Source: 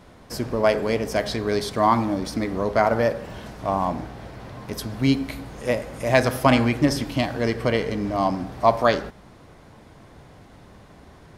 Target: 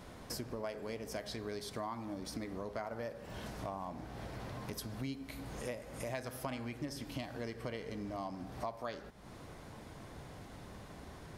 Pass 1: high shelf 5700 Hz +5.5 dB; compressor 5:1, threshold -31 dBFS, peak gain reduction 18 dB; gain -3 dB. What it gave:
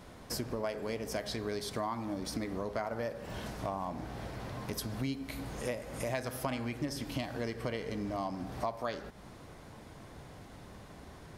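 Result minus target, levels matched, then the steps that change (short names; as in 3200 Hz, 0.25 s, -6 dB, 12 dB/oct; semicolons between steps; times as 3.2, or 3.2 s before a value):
compressor: peak gain reduction -5 dB
change: compressor 5:1, threshold -37.5 dBFS, peak gain reduction 23 dB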